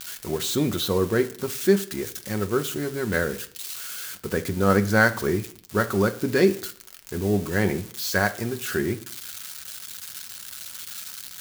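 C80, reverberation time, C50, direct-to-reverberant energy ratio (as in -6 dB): 20.0 dB, 0.50 s, 16.5 dB, 6.5 dB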